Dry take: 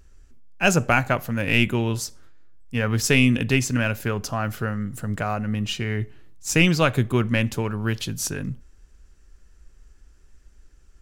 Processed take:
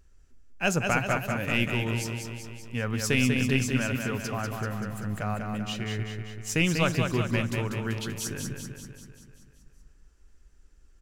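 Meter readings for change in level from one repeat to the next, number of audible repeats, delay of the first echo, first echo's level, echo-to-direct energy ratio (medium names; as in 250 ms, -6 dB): -4.5 dB, 7, 193 ms, -5.0 dB, -3.0 dB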